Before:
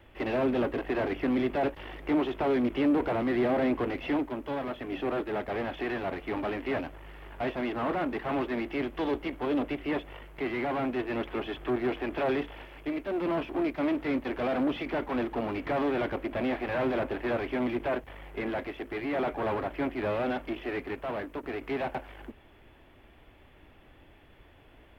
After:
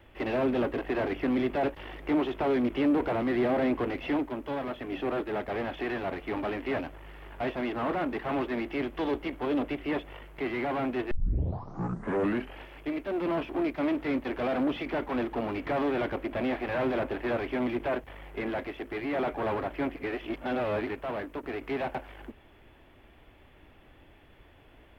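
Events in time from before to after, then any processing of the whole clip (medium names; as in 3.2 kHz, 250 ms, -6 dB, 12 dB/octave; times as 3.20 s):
11.11 s: tape start 1.51 s
19.96–20.87 s: reverse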